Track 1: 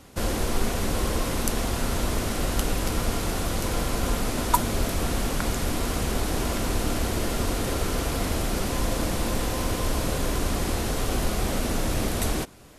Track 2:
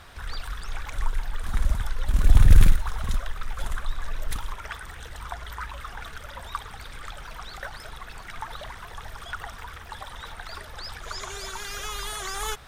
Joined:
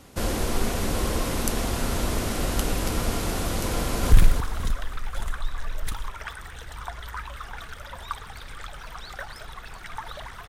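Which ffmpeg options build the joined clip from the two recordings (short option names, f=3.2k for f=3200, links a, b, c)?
-filter_complex "[0:a]apad=whole_dur=10.48,atrim=end=10.48,atrim=end=4.122[a];[1:a]atrim=start=2.558:end=8.92[b];[a][b]acrossfade=d=0.004:c1=hsin:c2=hsin,asplit=2[c][d];[d]afade=t=in:st=3.74:d=0.01,afade=t=out:st=4.12:d=0.01,aecho=0:1:280|560|840|1120|1400:0.501187|0.200475|0.08019|0.032076|0.0128304[e];[c][e]amix=inputs=2:normalize=0"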